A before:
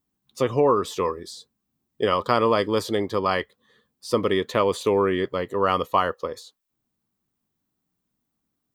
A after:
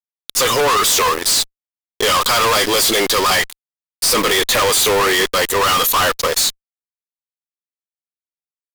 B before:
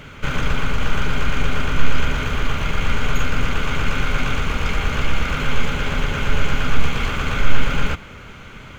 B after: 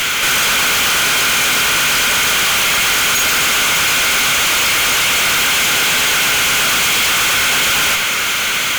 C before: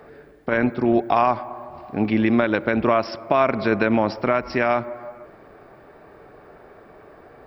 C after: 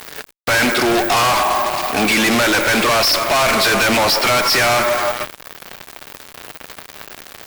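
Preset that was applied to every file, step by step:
first difference
tube saturation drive 32 dB, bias 0.45
fuzz pedal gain 65 dB, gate −60 dBFS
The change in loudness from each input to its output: +9.0, +12.0, +6.5 LU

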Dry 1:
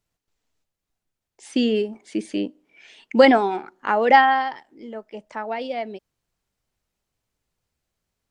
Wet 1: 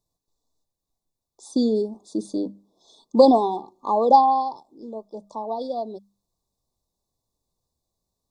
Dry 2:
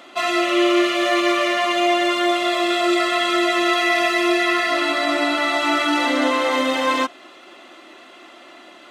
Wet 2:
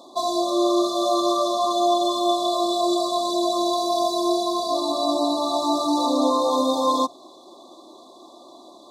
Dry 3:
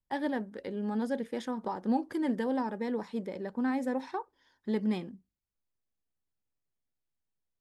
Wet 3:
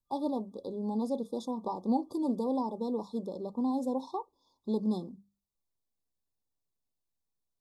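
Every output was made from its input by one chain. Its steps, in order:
brick-wall band-stop 1,200–3,400 Hz
mains-hum notches 50/100/150/200 Hz
dynamic equaliser 360 Hz, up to −4 dB, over −37 dBFS, Q 7.1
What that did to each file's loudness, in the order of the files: −1.0, −3.5, −0.5 LU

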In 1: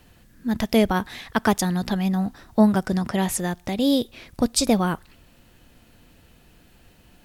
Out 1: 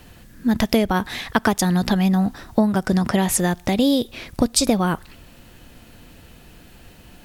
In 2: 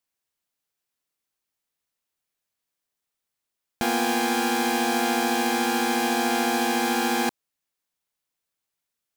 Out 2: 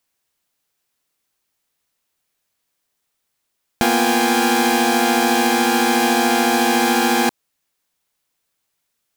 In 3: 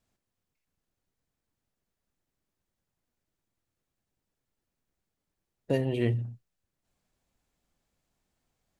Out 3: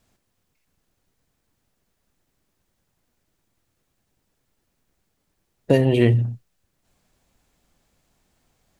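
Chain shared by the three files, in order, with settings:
downward compressor 6 to 1, threshold −22 dBFS
normalise the peak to −2 dBFS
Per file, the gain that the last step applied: +8.0, +9.5, +12.0 decibels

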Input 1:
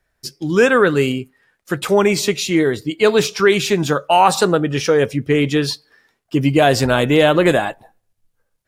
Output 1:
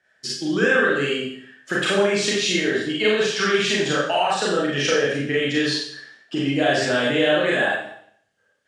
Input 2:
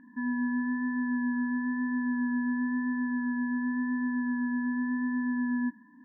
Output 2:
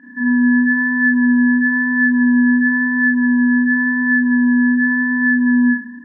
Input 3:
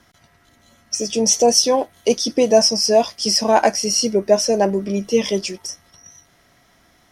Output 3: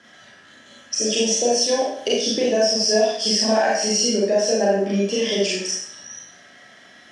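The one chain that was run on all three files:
downward compressor 6 to 1, threshold −23 dBFS
loudspeaker in its box 170–8,400 Hz, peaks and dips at 610 Hz +4 dB, 990 Hz −5 dB, 1,700 Hz +10 dB, 3,100 Hz +7 dB
four-comb reverb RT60 0.62 s, combs from 29 ms, DRR −5.5 dB
normalise the peak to −6 dBFS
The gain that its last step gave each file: −2.0, +5.5, −0.5 decibels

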